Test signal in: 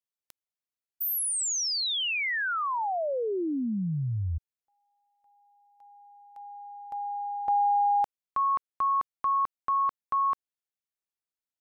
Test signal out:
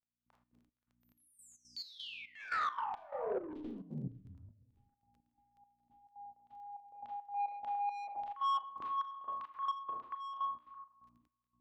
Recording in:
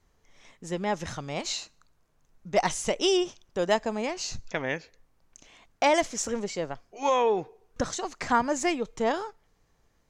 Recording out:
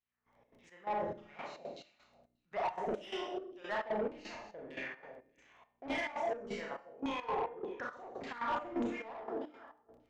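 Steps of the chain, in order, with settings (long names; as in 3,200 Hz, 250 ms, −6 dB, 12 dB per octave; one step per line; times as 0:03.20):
feedback delay that plays each chunk backwards 136 ms, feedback 49%, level −6.5 dB
mains hum 60 Hz, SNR 33 dB
auto-filter band-pass saw down 1.7 Hz 280–3,400 Hz
four-comb reverb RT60 0.5 s, combs from 26 ms, DRR −1 dB
surface crackle 11 per second −51 dBFS
low-shelf EQ 130 Hz +9 dB
soft clipping −28 dBFS
high-shelf EQ 4,200 Hz −12 dB
gate pattern "...xx.xx..xxx" 173 BPM −12 dB
hum removal 301.4 Hz, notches 11
level −1 dB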